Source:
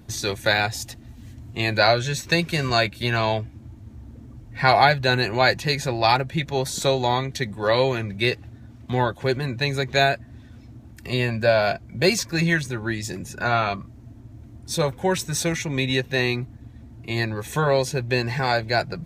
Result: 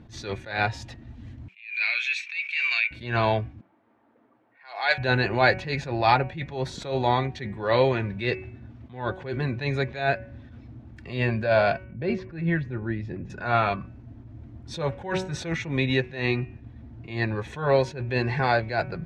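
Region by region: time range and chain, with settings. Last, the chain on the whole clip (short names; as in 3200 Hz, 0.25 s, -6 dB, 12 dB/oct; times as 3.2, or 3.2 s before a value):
1.48–2.91 resonant high-pass 2400 Hz, resonance Q 15 + compressor 10:1, threshold -17 dBFS
3.61–4.98 HPF 440 Hz + low-pass opened by the level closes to 1200 Hz, open at -17 dBFS + tilt +4 dB/oct
11.84–13.3 LPF 1900 Hz + bell 1100 Hz -7 dB 2.2 oct
whole clip: LPF 3000 Hz 12 dB/oct; de-hum 187.2 Hz, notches 16; attack slew limiter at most 120 dB/s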